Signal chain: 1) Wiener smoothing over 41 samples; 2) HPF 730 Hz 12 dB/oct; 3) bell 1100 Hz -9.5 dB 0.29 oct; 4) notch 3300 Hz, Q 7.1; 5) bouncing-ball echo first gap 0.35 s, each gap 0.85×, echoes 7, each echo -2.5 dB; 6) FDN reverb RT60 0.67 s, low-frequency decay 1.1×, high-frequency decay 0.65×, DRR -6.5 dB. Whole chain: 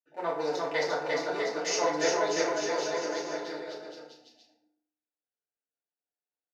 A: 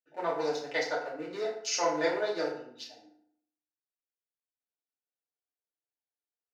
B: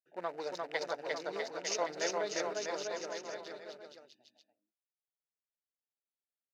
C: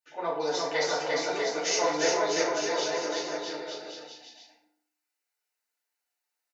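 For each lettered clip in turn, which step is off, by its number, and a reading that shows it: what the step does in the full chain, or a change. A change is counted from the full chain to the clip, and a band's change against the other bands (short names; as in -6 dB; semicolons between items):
5, echo-to-direct 10.5 dB to 6.5 dB; 6, echo-to-direct 10.5 dB to 1.0 dB; 1, 4 kHz band +3.5 dB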